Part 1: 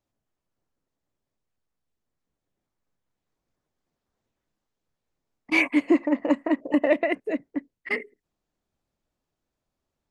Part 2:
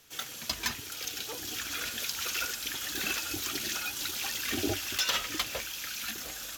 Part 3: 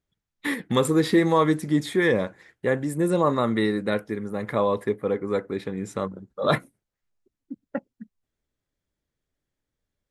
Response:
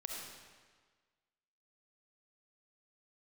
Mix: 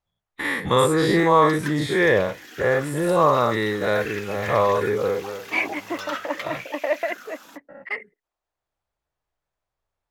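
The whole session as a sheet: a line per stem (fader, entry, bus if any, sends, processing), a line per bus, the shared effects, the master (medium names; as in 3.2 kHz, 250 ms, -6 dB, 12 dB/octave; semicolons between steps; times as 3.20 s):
+3.0 dB, 0.00 s, no send, Chebyshev high-pass 790 Hz, order 2
-4.5 dB, 1.00 s, no send, steep high-pass 160 Hz 48 dB/octave; sweeping bell 0.44 Hz 760–2300 Hz +15 dB
+3.0 dB, 0.00 s, no send, every event in the spectrogram widened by 120 ms; gate -41 dBFS, range -9 dB; peaking EQ 250 Hz -11.5 dB 1.2 oct; auto duck -18 dB, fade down 0.40 s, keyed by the first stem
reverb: none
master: treble shelf 2.6 kHz -9 dB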